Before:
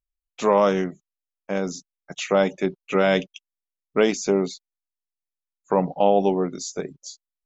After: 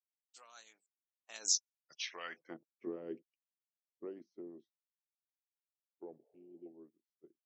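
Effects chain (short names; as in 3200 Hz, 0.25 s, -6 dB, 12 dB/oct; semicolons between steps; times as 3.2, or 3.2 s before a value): Doppler pass-by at 1.54, 47 m/s, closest 4.2 m; expander -56 dBFS; harmonic-percussive split harmonic -12 dB; band-pass sweep 5800 Hz -> 350 Hz, 1.91–2.79; spectral repair 6.24–6.63, 410–1200 Hz before; gain +10.5 dB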